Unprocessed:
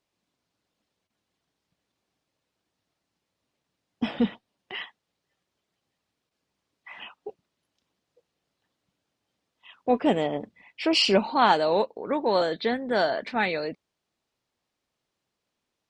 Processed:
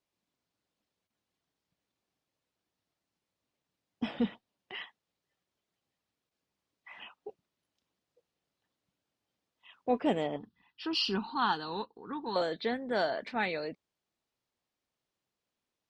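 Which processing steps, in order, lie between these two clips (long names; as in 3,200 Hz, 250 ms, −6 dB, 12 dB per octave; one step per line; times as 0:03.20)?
0:10.36–0:12.36: phaser with its sweep stopped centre 2,200 Hz, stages 6
level −6.5 dB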